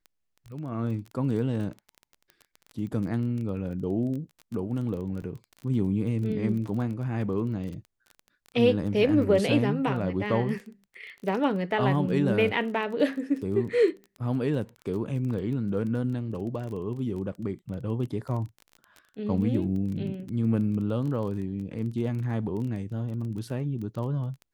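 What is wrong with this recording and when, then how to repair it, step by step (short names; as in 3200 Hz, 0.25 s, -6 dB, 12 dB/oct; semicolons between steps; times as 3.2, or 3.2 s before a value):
crackle 20/s -35 dBFS
5.22–5.23 gap 6.1 ms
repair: de-click; interpolate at 5.22, 6.1 ms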